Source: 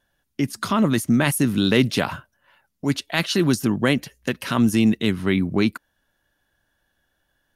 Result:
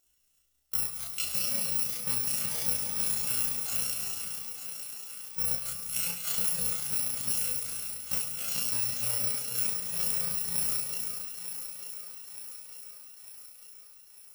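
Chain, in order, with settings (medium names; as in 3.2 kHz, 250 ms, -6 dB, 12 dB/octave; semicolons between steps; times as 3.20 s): bit-reversed sample order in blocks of 128 samples; chorus voices 6, 0.3 Hz, delay 16 ms, depth 3.3 ms; compression 6:1, threshold -33 dBFS, peak gain reduction 16.5 dB; tilt EQ +1.5 dB/octave; thinning echo 475 ms, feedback 58%, high-pass 270 Hz, level -9.5 dB; gated-style reverb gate 280 ms flat, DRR 4.5 dB; granular stretch 1.9×, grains 69 ms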